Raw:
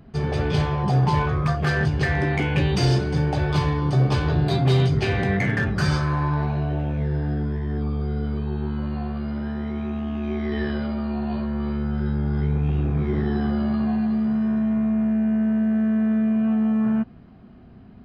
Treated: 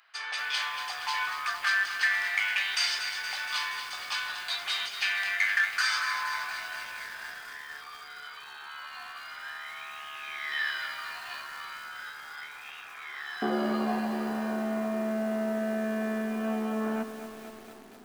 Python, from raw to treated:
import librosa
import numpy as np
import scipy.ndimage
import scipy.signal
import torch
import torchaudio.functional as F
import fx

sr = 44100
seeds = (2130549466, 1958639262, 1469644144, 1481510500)

y = fx.rider(x, sr, range_db=3, speed_s=2.0)
y = fx.highpass(y, sr, hz=fx.steps((0.0, 1300.0), (13.42, 310.0)), slope=24)
y = fx.echo_crushed(y, sr, ms=235, feedback_pct=80, bits=8, wet_db=-9.0)
y = F.gain(torch.from_numpy(y), 3.5).numpy()